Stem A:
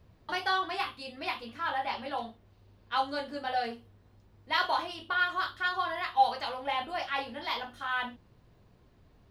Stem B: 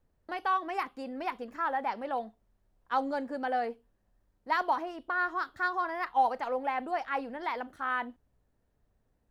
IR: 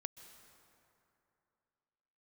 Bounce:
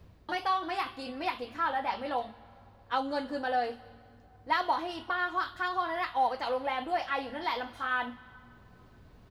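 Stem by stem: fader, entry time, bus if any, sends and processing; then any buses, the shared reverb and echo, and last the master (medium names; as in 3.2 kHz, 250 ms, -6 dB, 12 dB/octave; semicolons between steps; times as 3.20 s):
+2.0 dB, 0.00 s, send -5 dB, compression, threshold -31 dBFS, peak gain reduction 12.5 dB; auto duck -10 dB, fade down 0.25 s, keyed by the second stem
-1.0 dB, 0.4 ms, no send, hum 60 Hz, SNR 30 dB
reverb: on, RT60 2.8 s, pre-delay 118 ms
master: none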